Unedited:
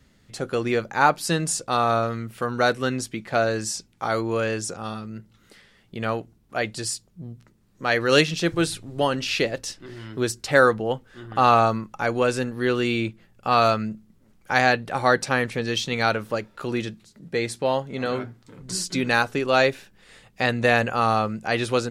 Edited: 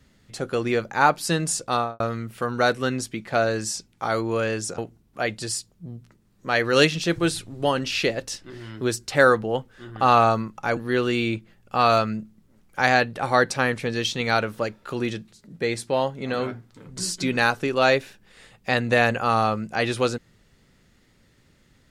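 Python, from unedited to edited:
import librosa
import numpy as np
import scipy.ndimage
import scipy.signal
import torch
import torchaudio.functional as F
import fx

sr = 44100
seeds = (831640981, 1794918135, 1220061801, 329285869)

y = fx.studio_fade_out(x, sr, start_s=1.73, length_s=0.27)
y = fx.edit(y, sr, fx.cut(start_s=4.78, length_s=1.36),
    fx.cut(start_s=12.13, length_s=0.36), tone=tone)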